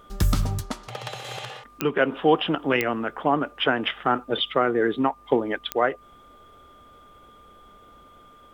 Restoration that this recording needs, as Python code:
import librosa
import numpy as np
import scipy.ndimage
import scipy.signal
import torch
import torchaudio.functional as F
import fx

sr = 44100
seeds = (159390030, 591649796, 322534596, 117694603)

y = fx.fix_declick_ar(x, sr, threshold=10.0)
y = fx.notch(y, sr, hz=1200.0, q=30.0)